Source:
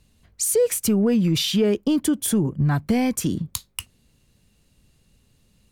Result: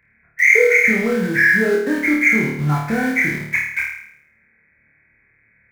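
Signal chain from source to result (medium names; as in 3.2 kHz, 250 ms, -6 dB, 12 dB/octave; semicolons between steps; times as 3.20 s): knee-point frequency compression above 1.3 kHz 4:1; high-pass 41 Hz 12 dB/octave; tilt EQ +2.5 dB/octave; in parallel at -7 dB: bit crusher 5-bit; on the sum: saturation -5 dBFS, distortion -20 dB; on a send: flutter echo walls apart 4.6 m, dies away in 0.71 s; on the sum: trim -1.5 dB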